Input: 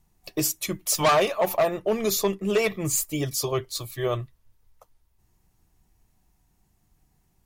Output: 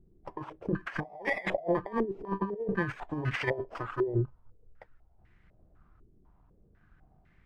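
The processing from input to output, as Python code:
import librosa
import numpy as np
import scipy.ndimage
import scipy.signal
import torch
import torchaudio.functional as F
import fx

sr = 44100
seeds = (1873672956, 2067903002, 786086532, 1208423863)

y = fx.bit_reversed(x, sr, seeds[0], block=32)
y = fx.over_compress(y, sr, threshold_db=-30.0, ratio=-0.5)
y = fx.peak_eq(y, sr, hz=110.0, db=-9.0, octaves=1.4, at=(3.51, 4.08))
y = fx.filter_held_lowpass(y, sr, hz=4.0, low_hz=380.0, high_hz=2000.0)
y = y * librosa.db_to_amplitude(-2.0)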